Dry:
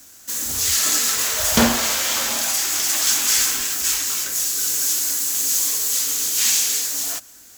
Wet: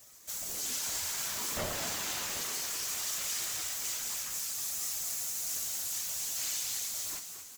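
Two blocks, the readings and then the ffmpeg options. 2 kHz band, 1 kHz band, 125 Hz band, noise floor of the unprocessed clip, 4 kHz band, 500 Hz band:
-15.5 dB, -15.0 dB, -14.5 dB, -46 dBFS, -15.0 dB, -14.5 dB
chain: -filter_complex "[0:a]acompressor=threshold=0.0355:ratio=1.5,asoftclip=type=hard:threshold=0.0841,aeval=exprs='val(0)*sin(2*PI*350*n/s)':c=same,afftfilt=real='hypot(re,im)*cos(2*PI*random(0))':imag='hypot(re,im)*sin(2*PI*random(1))':win_size=512:overlap=0.75,flanger=delay=8.1:depth=4.3:regen=60:speed=0.6:shape=triangular,asplit=7[s0][s1][s2][s3][s4][s5][s6];[s1]adelay=229,afreqshift=75,volume=0.398[s7];[s2]adelay=458,afreqshift=150,volume=0.204[s8];[s3]adelay=687,afreqshift=225,volume=0.104[s9];[s4]adelay=916,afreqshift=300,volume=0.0531[s10];[s5]adelay=1145,afreqshift=375,volume=0.0269[s11];[s6]adelay=1374,afreqshift=450,volume=0.0138[s12];[s0][s7][s8][s9][s10][s11][s12]amix=inputs=7:normalize=0,volume=1.41"

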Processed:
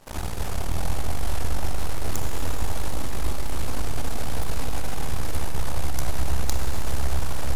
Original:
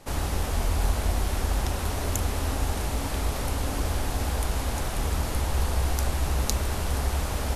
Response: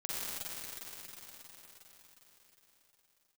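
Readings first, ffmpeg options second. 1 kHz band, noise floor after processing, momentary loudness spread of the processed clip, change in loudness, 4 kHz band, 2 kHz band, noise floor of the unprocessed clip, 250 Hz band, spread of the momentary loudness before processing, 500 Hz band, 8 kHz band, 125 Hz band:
-2.0 dB, -24 dBFS, 3 LU, -2.5 dB, -2.0 dB, -2.0 dB, -31 dBFS, -2.0 dB, 2 LU, -2.5 dB, -2.0 dB, -2.0 dB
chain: -filter_complex "[0:a]aeval=exprs='max(val(0),0)':c=same,asplit=2[s0][s1];[1:a]atrim=start_sample=2205[s2];[s1][s2]afir=irnorm=-1:irlink=0,volume=0.473[s3];[s0][s3]amix=inputs=2:normalize=0,volume=0.794"

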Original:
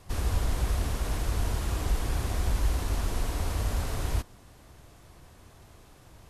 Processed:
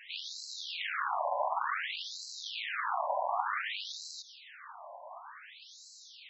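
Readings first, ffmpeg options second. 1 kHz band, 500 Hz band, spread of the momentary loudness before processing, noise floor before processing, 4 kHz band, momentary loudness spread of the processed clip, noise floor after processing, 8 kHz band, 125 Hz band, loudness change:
+7.0 dB, -0.5 dB, 3 LU, -54 dBFS, +3.5 dB, 17 LU, -54 dBFS, -7.5 dB, under -40 dB, -4.0 dB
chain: -filter_complex "[0:a]aeval=exprs='0.158*sin(PI/2*3.98*val(0)/0.158)':c=same,acrossover=split=3900[s0][s1];[s1]acompressor=threshold=0.00501:ratio=4:attack=1:release=60[s2];[s0][s2]amix=inputs=2:normalize=0,afftfilt=real='re*between(b*sr/1024,740*pow(5600/740,0.5+0.5*sin(2*PI*0.55*pts/sr))/1.41,740*pow(5600/740,0.5+0.5*sin(2*PI*0.55*pts/sr))*1.41)':imag='im*between(b*sr/1024,740*pow(5600/740,0.5+0.5*sin(2*PI*0.55*pts/sr))/1.41,740*pow(5600/740,0.5+0.5*sin(2*PI*0.55*pts/sr))*1.41)':win_size=1024:overlap=0.75"

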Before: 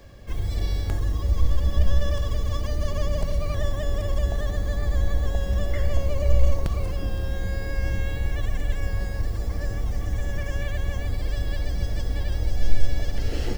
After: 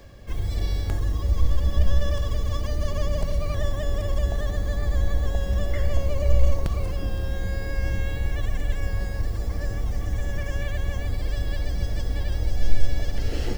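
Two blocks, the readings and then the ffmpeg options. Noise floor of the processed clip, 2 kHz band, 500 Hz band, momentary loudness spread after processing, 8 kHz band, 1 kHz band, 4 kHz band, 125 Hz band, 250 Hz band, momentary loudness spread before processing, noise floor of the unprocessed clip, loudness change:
-30 dBFS, 0.0 dB, 0.0 dB, 5 LU, no reading, 0.0 dB, 0.0 dB, 0.0 dB, 0.0 dB, 5 LU, -30 dBFS, 0.0 dB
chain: -af "areverse,acompressor=mode=upward:threshold=0.0141:ratio=2.5,areverse"

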